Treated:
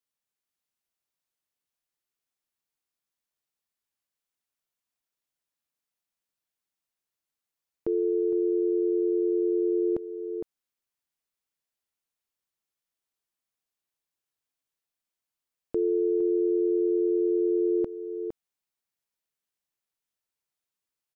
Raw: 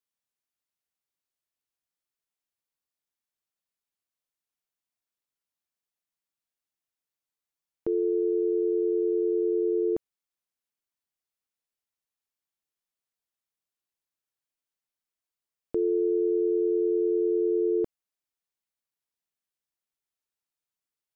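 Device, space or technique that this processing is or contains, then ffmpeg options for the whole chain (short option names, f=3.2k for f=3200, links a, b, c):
ducked delay: -filter_complex "[0:a]asplit=3[a][b][c];[b]adelay=460,volume=-4dB[d];[c]apad=whole_len=953068[e];[d][e]sidechaincompress=threshold=-31dB:ratio=8:attack=16:release=950[f];[a][f]amix=inputs=2:normalize=0"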